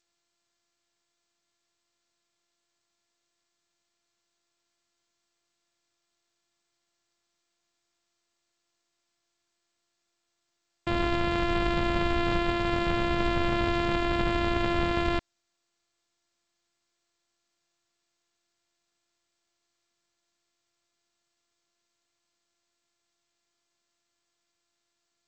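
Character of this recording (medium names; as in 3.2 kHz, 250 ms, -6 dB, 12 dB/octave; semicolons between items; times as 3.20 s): a buzz of ramps at a fixed pitch in blocks of 128 samples; G.722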